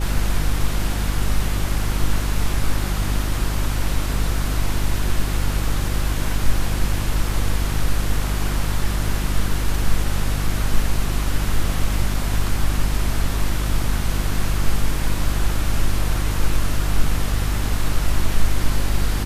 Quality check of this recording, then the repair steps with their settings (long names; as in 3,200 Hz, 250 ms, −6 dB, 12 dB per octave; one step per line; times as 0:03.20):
mains hum 50 Hz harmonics 7 −23 dBFS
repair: hum removal 50 Hz, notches 7